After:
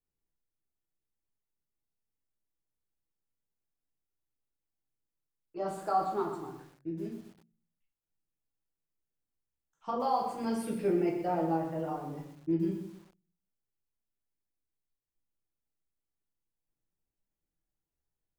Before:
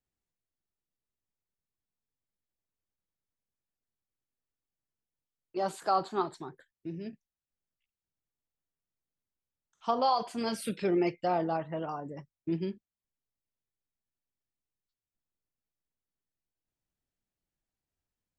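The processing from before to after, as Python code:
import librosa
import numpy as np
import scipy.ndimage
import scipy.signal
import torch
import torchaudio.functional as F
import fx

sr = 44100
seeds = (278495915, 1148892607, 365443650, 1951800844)

y = fx.peak_eq(x, sr, hz=3900.0, db=-10.0, octaves=1.4)
y = fx.room_shoebox(y, sr, seeds[0], volume_m3=42.0, walls='mixed', distance_m=0.68)
y = fx.echo_crushed(y, sr, ms=122, feedback_pct=35, bits=8, wet_db=-9.0)
y = y * 10.0 ** (-5.5 / 20.0)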